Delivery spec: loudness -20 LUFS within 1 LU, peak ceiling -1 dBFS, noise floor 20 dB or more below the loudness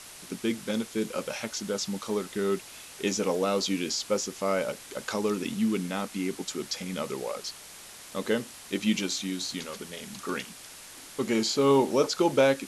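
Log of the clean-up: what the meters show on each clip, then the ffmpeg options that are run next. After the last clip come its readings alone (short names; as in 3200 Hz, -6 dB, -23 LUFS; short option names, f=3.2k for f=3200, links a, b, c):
noise floor -47 dBFS; noise floor target -50 dBFS; loudness -29.5 LUFS; peak -8.5 dBFS; loudness target -20.0 LUFS
-> -af "afftdn=nr=6:nf=-47"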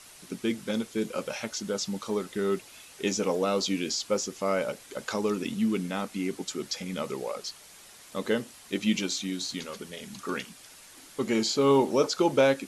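noise floor -51 dBFS; loudness -29.5 LUFS; peak -8.5 dBFS; loudness target -20.0 LUFS
-> -af "volume=9.5dB,alimiter=limit=-1dB:level=0:latency=1"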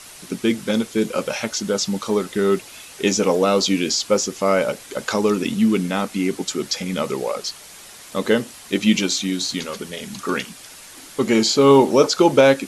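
loudness -20.0 LUFS; peak -1.0 dBFS; noise floor -42 dBFS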